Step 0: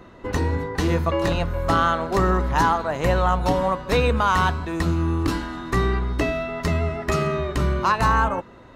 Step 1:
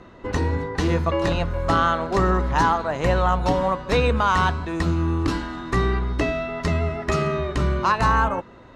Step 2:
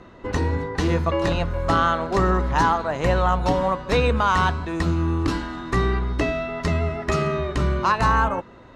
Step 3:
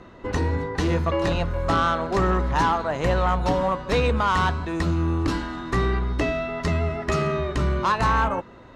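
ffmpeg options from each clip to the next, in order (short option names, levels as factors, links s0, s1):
-af "lowpass=7900"
-af anull
-af "asoftclip=type=tanh:threshold=0.224"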